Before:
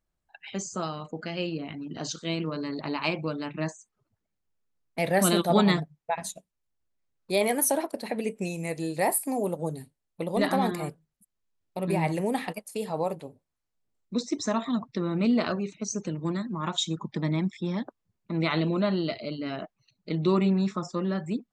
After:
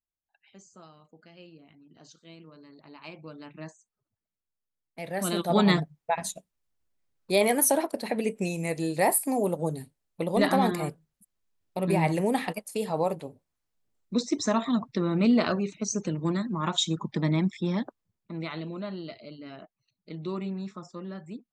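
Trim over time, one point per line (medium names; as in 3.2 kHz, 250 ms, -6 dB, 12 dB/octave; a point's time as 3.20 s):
2.86 s -19 dB
3.43 s -10.5 dB
5.05 s -10.5 dB
5.75 s +2 dB
17.79 s +2 dB
18.54 s -10 dB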